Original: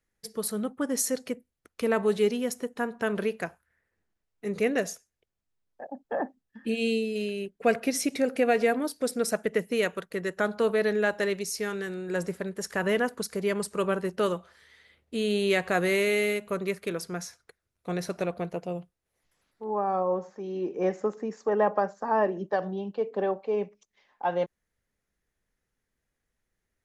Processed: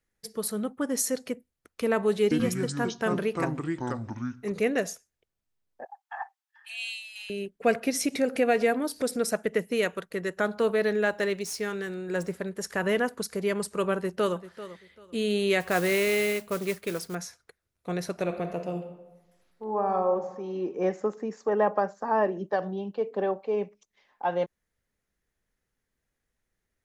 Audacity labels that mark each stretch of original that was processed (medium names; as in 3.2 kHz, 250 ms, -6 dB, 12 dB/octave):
2.230000	4.520000	ever faster or slower copies 82 ms, each echo -5 st, echoes 2
5.850000	7.300000	steep high-pass 750 Hz 96 dB/octave
8.010000	9.200000	upward compressor, threshold -26 dBFS
10.410000	12.340000	median filter over 3 samples
13.960000	14.370000	echo throw 390 ms, feedback 25%, level -14.5 dB
15.600000	17.150000	modulation noise under the signal 15 dB
18.210000	20.130000	reverb throw, RT60 1.1 s, DRR 6 dB